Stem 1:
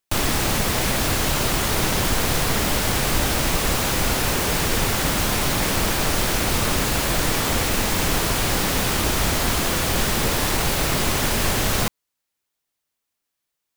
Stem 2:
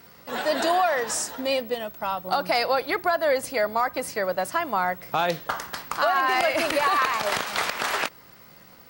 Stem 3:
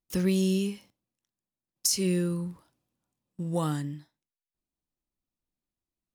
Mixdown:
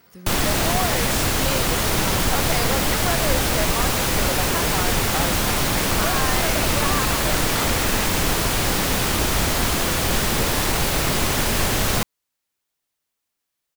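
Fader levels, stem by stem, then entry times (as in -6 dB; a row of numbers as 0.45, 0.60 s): +0.5, -5.0, -15.0 dB; 0.15, 0.00, 0.00 s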